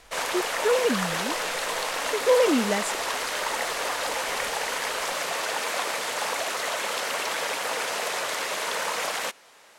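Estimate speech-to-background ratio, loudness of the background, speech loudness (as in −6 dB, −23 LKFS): 1.5 dB, −27.5 LKFS, −26.0 LKFS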